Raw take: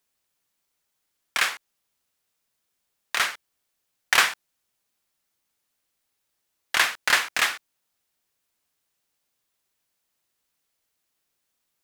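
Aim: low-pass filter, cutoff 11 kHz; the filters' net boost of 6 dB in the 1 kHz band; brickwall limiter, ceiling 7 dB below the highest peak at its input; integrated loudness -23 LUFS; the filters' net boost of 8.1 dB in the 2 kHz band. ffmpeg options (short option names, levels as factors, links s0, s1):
-af "lowpass=11000,equalizer=f=1000:t=o:g=4.5,equalizer=f=2000:t=o:g=8.5,volume=0.596,alimiter=limit=0.398:level=0:latency=1"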